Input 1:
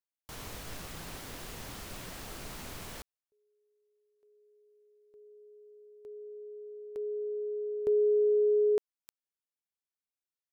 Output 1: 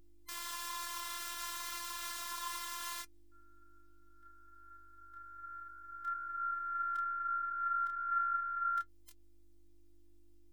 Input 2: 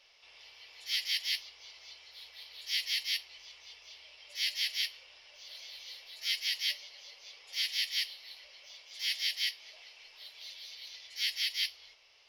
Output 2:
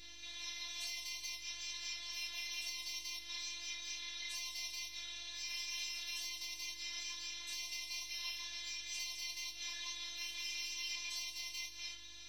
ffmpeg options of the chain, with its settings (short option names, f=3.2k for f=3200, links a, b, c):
-af "afftfilt=real='real(if(lt(b,960),b+48*(1-2*mod(floor(b/48),2)),b),0)':imag='imag(if(lt(b,960),b+48*(1-2*mod(floor(b/48),2)),b),0)':win_size=2048:overlap=0.75,tiltshelf=f=1.1k:g=-7.5,acompressor=threshold=-39dB:ratio=8:attack=9.6:release=119:knee=1:detection=rms,alimiter=level_in=11.5dB:limit=-24dB:level=0:latency=1:release=125,volume=-11.5dB,acontrast=53,flanger=delay=22.5:depth=6.6:speed=2.2,aeval=exprs='val(0)+0.00158*(sin(2*PI*50*n/s)+sin(2*PI*2*50*n/s)/2+sin(2*PI*3*50*n/s)/3+sin(2*PI*4*50*n/s)/4+sin(2*PI*5*50*n/s)/5)':c=same,flanger=delay=4.8:depth=1.6:regen=59:speed=0.29:shape=sinusoidal,afftfilt=real='hypot(re,im)*cos(PI*b)':imag='0':win_size=512:overlap=0.75,volume=8dB"